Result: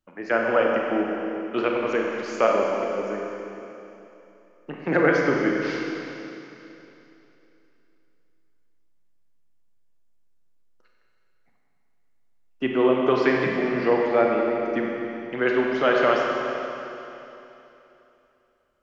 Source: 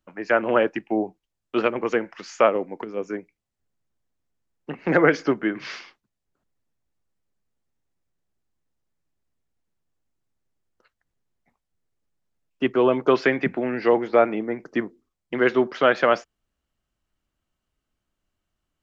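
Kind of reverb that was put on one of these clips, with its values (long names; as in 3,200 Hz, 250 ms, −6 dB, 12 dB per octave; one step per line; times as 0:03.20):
four-comb reverb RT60 3.1 s, combs from 31 ms, DRR −1 dB
level −3.5 dB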